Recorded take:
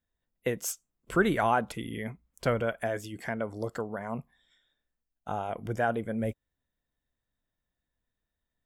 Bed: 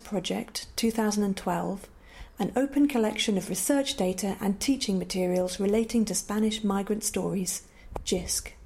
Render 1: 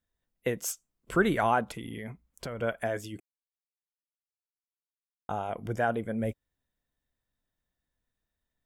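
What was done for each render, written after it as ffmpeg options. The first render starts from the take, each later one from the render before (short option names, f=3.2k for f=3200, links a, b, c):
-filter_complex "[0:a]asplit=3[a][b][c];[a]afade=t=out:st=1.63:d=0.02[d];[b]acompressor=threshold=-34dB:ratio=6:attack=3.2:release=140:knee=1:detection=peak,afade=t=in:st=1.63:d=0.02,afade=t=out:st=2.61:d=0.02[e];[c]afade=t=in:st=2.61:d=0.02[f];[d][e][f]amix=inputs=3:normalize=0,asplit=3[g][h][i];[g]atrim=end=3.2,asetpts=PTS-STARTPTS,afade=t=out:st=3.196:d=0.004:c=hsin[j];[h]atrim=start=3.2:end=5.29,asetpts=PTS-STARTPTS,volume=0[k];[i]atrim=start=5.29,asetpts=PTS-STARTPTS,afade=t=in:d=0.004:c=hsin[l];[j][k][l]concat=n=3:v=0:a=1"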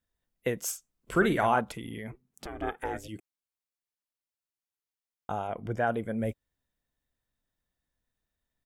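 -filter_complex "[0:a]asplit=3[a][b][c];[a]afade=t=out:st=0.71:d=0.02[d];[b]asplit=2[e][f];[f]adelay=48,volume=-9.5dB[g];[e][g]amix=inputs=2:normalize=0,afade=t=in:st=0.71:d=0.02,afade=t=out:st=1.59:d=0.02[h];[c]afade=t=in:st=1.59:d=0.02[i];[d][h][i]amix=inputs=3:normalize=0,asplit=3[j][k][l];[j]afade=t=out:st=2.11:d=0.02[m];[k]aeval=exprs='val(0)*sin(2*PI*190*n/s)':c=same,afade=t=in:st=2.11:d=0.02,afade=t=out:st=3.07:d=0.02[n];[l]afade=t=in:st=3.07:d=0.02[o];[m][n][o]amix=inputs=3:normalize=0,asettb=1/sr,asplit=3[p][q][r];[p]atrim=end=5.474[s];[q]atrim=start=5.47:end=5.87,asetpts=PTS-STARTPTS,afade=t=in:d=0.004:c=qsin,afade=t=out:st=0.396:d=0.004:c=qsin,highshelf=f=5.4k:g=-11.5[t];[r]atrim=start=5.866[u];[s][t]acrossfade=d=0.004:c1=hsin:c2=qsin[v];[v][u]acrossfade=d=0.004:c1=qsin:c2=hsin"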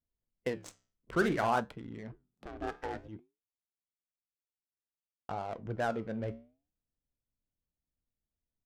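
-af "adynamicsmooth=sensitivity=7:basefreq=670,flanger=delay=7:depth=8.6:regen=-78:speed=0.56:shape=sinusoidal"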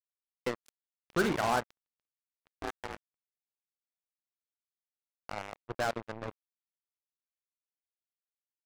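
-af "acrusher=bits=4:mix=0:aa=0.5"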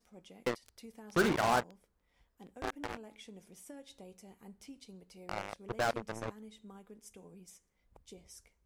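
-filter_complex "[1:a]volume=-25.5dB[a];[0:a][a]amix=inputs=2:normalize=0"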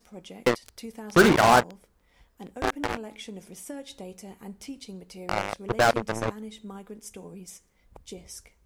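-af "volume=11.5dB"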